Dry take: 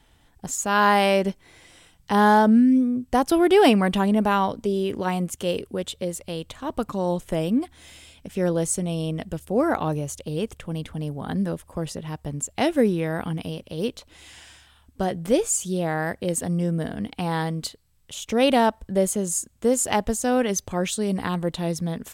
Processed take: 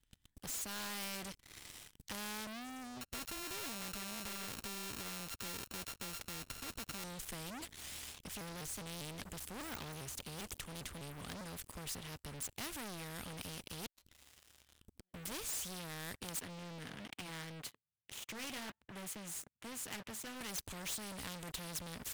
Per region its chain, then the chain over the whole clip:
3.01–7.04 s: sorted samples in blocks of 32 samples + compression 2:1, threshold -30 dBFS
7.61–11.65 s: de-esser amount 90% + vibrato with a chosen wave saw up 5 Hz, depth 160 cents
13.86–15.14 s: inverted gate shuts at -19 dBFS, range -31 dB + compression 8:1, threshold -51 dBFS
16.39–20.41 s: resonant high shelf 3.4 kHz -10.5 dB, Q 1.5 + flange 1.2 Hz, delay 2.4 ms, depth 5 ms, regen -61% + high-pass 110 Hz 24 dB/octave
whole clip: amplifier tone stack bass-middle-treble 6-0-2; waveshaping leveller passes 5; spectrum-flattening compressor 2:1; trim +2.5 dB

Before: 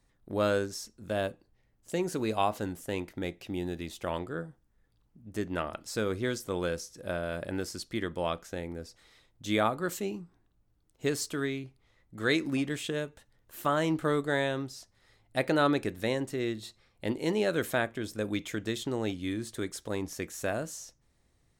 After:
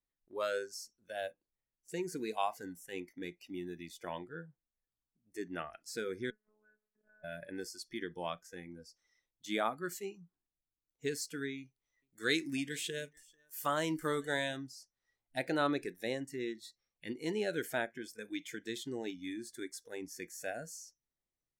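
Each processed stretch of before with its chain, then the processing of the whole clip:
6.30–7.24 s: steep low-pass 2 kHz + compression 4:1, threshold -49 dBFS + robot voice 213 Hz
11.58–14.57 s: treble shelf 3.1 kHz +7.5 dB + delay 442 ms -19.5 dB
whole clip: spectral noise reduction 18 dB; peaking EQ 82 Hz -9.5 dB 1.4 oct; trim -5.5 dB

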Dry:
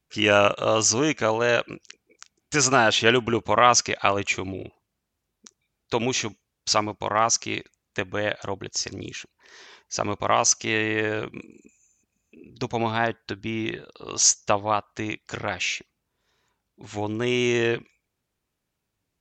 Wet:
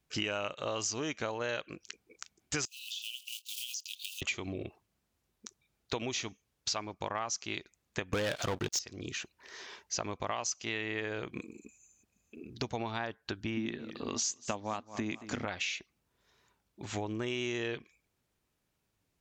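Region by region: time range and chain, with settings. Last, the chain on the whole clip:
2.65–4.22 s: block-companded coder 5-bit + steep high-pass 2.7 kHz 96 dB/octave + compression 16:1, threshold -35 dBFS
8.13–8.79 s: upward compressor, threshold -33 dBFS + waveshaping leveller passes 5
13.57–15.45 s: peaking EQ 240 Hz +14 dB 0.4 oct + modulated delay 227 ms, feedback 37%, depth 92 cents, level -19.5 dB
whole clip: dynamic bell 3.6 kHz, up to +4 dB, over -34 dBFS, Q 1.1; compression 6:1, threshold -33 dBFS

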